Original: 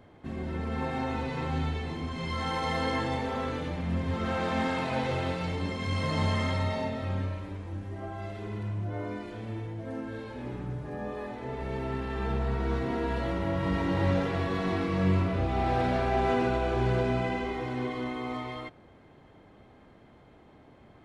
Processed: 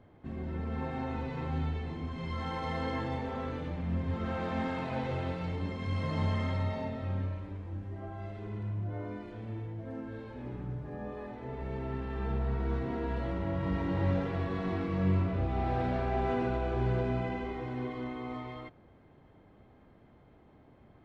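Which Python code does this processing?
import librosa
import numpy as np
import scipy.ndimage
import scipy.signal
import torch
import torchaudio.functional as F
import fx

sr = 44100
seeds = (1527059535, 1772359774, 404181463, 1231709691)

y = fx.lowpass(x, sr, hz=2800.0, slope=6)
y = fx.low_shelf(y, sr, hz=210.0, db=4.5)
y = F.gain(torch.from_numpy(y), -5.5).numpy()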